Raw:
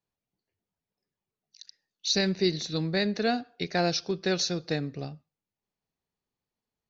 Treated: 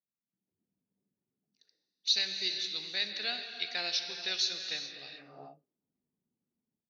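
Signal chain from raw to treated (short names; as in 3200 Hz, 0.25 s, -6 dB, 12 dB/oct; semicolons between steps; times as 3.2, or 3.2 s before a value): non-linear reverb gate 0.46 s flat, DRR 5.5 dB; AGC gain up to 16.5 dB; auto-wah 220–3300 Hz, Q 2.3, up, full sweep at -18.5 dBFS; gain -7.5 dB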